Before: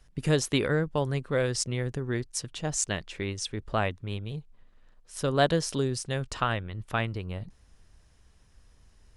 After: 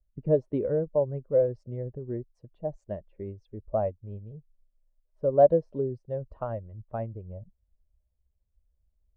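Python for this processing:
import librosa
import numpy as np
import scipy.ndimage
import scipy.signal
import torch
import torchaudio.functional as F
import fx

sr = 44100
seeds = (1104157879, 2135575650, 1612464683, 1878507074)

y = fx.bin_expand(x, sr, power=1.5)
y = fx.lowpass_res(y, sr, hz=590.0, q=4.9)
y = y * librosa.db_to_amplitude(-3.0)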